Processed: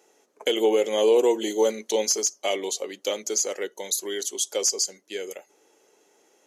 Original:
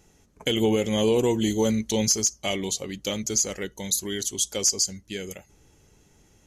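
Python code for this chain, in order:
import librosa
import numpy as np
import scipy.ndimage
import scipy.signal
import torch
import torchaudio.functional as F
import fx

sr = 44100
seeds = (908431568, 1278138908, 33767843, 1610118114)

y = scipy.signal.sosfilt(scipy.signal.butter(4, 410.0, 'highpass', fs=sr, output='sos'), x)
y = fx.tilt_shelf(y, sr, db=5.0, hz=760.0)
y = y * 10.0 ** (3.5 / 20.0)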